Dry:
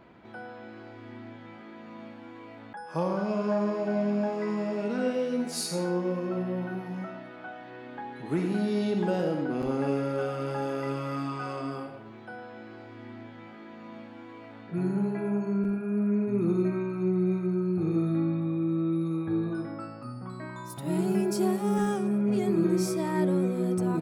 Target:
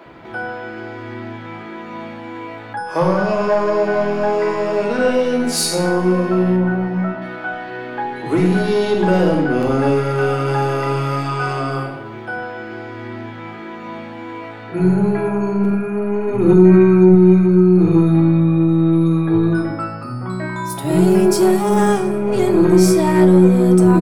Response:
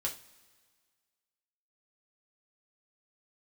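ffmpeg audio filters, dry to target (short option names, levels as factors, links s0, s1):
-filter_complex "[0:a]asettb=1/sr,asplit=3[s0][s1][s2];[s0]atrim=end=6.564[s3];[s1]atrim=start=6.56:end=7.22,asetpts=PTS-STARTPTS,afade=t=in:d=0.004:c=qsin,afade=t=out:st=0.656:d=0.004:c=qsin,lowpass=f=1600:p=1[s4];[s2]atrim=start=7.216[s5];[s3][s4]acrossfade=d=0.004:c1=hsin:c2=qsin[s6];[s6][s5]acrossfade=d=0.004:c1=qsin:c2=hsin,aeval=exprs='(tanh(10*val(0)+0.25)-tanh(0.25))/10':c=same,asettb=1/sr,asplit=3[s7][s8][s9];[s7]atrim=end=16.454[s10];[s8]atrim=start=16.45:end=17.09,asetpts=PTS-STARTPTS,afade=t=in:d=0.004:c=qsin,afade=t=out:st=0.636:d=0.004:c=qsin,aecho=1:1:5.3:0.86,atrim=end_sample=28224[s11];[s9]atrim=start=17.086[s12];[s10][s11]acrossfade=d=0.004:c1=hsin:c2=qsin[s13];[s13][s12]acrossfade=d=0.004:c1=qsin:c2=hsin,acrossover=split=230[s14][s15];[s14]adelay=60[s16];[s16][s15]amix=inputs=2:normalize=0,asplit=2[s17][s18];[1:a]atrim=start_sample=2205[s19];[s18][s19]afir=irnorm=-1:irlink=0,volume=0.891[s20];[s17][s20]amix=inputs=2:normalize=0,alimiter=level_in=3.35:limit=0.891:release=50:level=0:latency=1,volume=0.891"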